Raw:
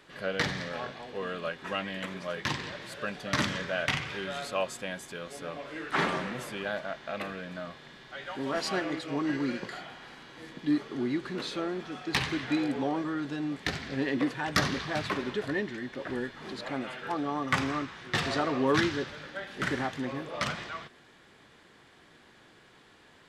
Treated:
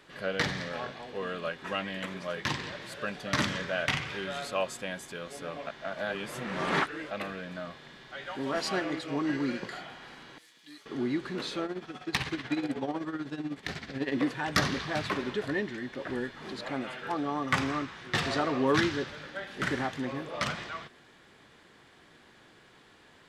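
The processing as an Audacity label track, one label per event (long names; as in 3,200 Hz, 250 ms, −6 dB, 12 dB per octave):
5.670000	7.110000	reverse
10.380000	10.860000	first-order pre-emphasis coefficient 0.97
11.650000	14.120000	amplitude tremolo 16 Hz, depth 69%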